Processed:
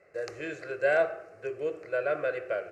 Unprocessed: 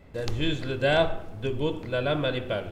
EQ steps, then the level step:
band-pass filter 350–6,800 Hz
phaser with its sweep stopped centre 920 Hz, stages 6
0.0 dB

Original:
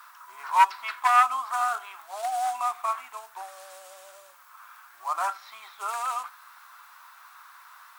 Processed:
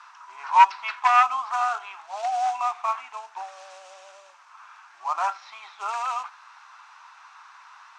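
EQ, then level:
loudspeaker in its box 220–6,600 Hz, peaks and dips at 860 Hz +7 dB, 2,600 Hz +6 dB, 6,000 Hz +4 dB
0.0 dB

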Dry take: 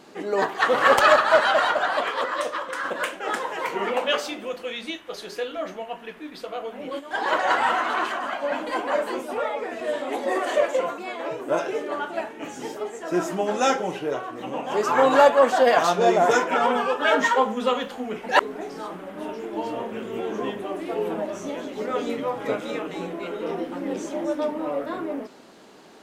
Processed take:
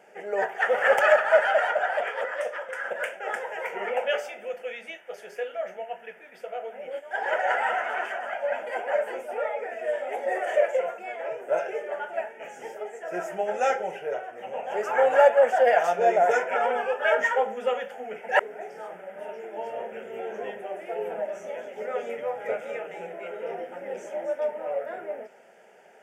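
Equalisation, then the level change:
high-pass filter 290 Hz 12 dB per octave
high-shelf EQ 4,400 Hz −8.5 dB
phaser with its sweep stopped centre 1,100 Hz, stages 6
0.0 dB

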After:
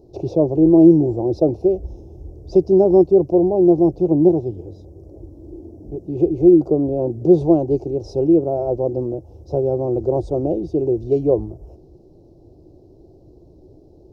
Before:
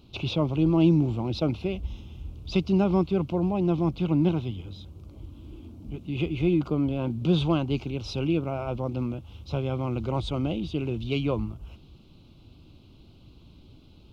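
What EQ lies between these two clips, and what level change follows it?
drawn EQ curve 160 Hz 0 dB, 230 Hz −5 dB, 360 Hz +14 dB, 740 Hz +8 dB, 1,200 Hz −18 dB, 3,200 Hz −30 dB, 5,400 Hz −3 dB, 8,800 Hz −6 dB
+2.0 dB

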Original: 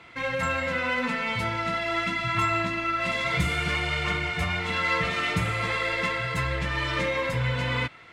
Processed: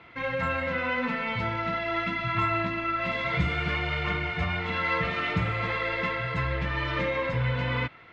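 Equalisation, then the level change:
high-frequency loss of the air 220 metres
0.0 dB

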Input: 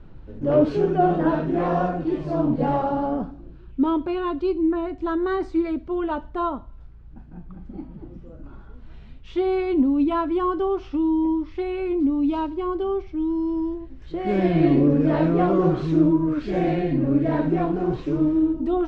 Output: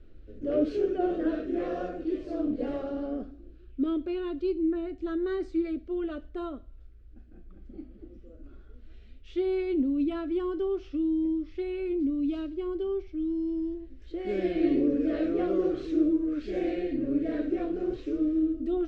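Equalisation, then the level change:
phaser with its sweep stopped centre 380 Hz, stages 4
−5.5 dB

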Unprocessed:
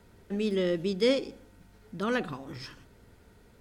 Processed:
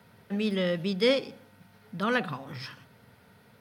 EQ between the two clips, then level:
high-pass filter 110 Hz 24 dB per octave
parametric band 340 Hz −12.5 dB 0.73 octaves
parametric band 7,200 Hz −11.5 dB 0.59 octaves
+5.0 dB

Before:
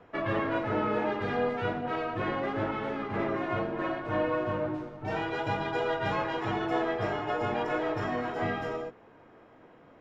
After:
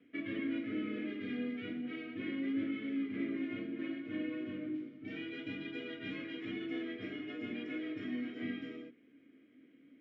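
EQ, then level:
formant filter i
+4.5 dB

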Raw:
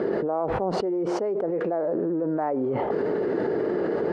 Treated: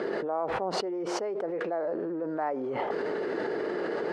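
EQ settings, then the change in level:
tilt shelving filter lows −5.5 dB, about 1,300 Hz
low-shelf EQ 180 Hz −10.5 dB
0.0 dB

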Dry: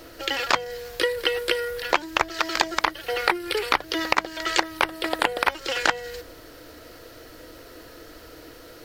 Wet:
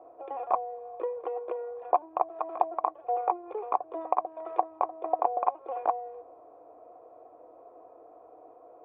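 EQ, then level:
formant resonators in series a
high-pass filter 65 Hz
parametric band 430 Hz +14.5 dB 1.7 octaves
0.0 dB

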